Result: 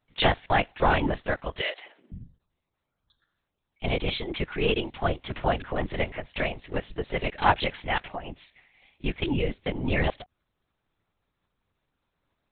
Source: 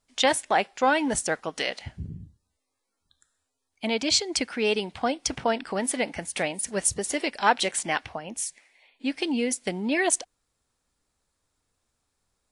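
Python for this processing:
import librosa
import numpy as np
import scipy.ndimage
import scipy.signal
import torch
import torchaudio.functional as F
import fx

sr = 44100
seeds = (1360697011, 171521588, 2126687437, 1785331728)

y = fx.lpc_vocoder(x, sr, seeds[0], excitation='whisper', order=10)
y = fx.highpass(y, sr, hz=400.0, slope=24, at=(1.61, 2.12))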